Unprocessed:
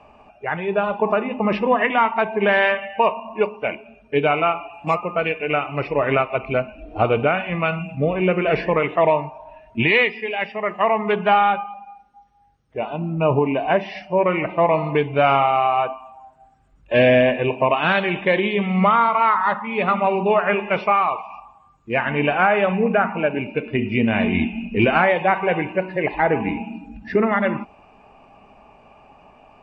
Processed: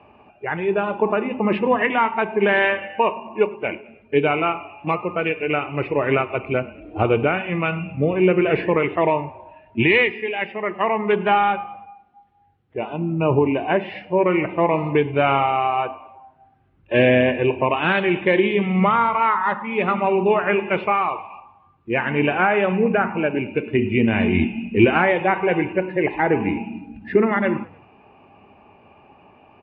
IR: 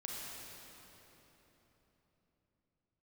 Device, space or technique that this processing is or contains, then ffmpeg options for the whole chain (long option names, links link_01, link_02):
frequency-shifting delay pedal into a guitar cabinet: -filter_complex "[0:a]asplit=4[link_01][link_02][link_03][link_04];[link_02]adelay=101,afreqshift=-35,volume=-23.5dB[link_05];[link_03]adelay=202,afreqshift=-70,volume=-29.3dB[link_06];[link_04]adelay=303,afreqshift=-105,volume=-35.2dB[link_07];[link_01][link_05][link_06][link_07]amix=inputs=4:normalize=0,highpass=83,equalizer=frequency=92:width_type=q:width=4:gain=9,equalizer=frequency=350:width_type=q:width=4:gain=7,equalizer=frequency=660:width_type=q:width=4:gain=-5,equalizer=frequency=1200:width_type=q:width=4:gain=-3,lowpass=frequency=3400:width=0.5412,lowpass=frequency=3400:width=1.3066"